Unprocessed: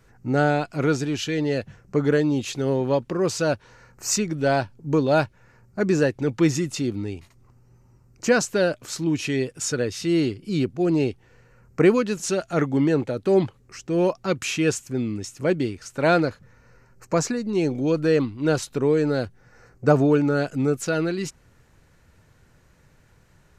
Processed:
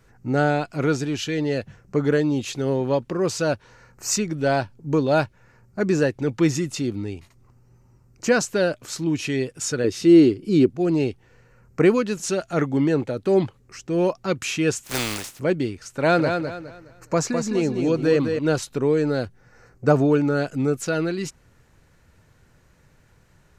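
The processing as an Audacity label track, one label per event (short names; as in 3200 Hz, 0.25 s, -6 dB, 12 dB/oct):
9.840000	10.700000	bell 340 Hz +9.5 dB 1.2 oct
14.830000	15.380000	spectral contrast lowered exponent 0.3
15.890000	18.390000	feedback echo 0.208 s, feedback 31%, level -6 dB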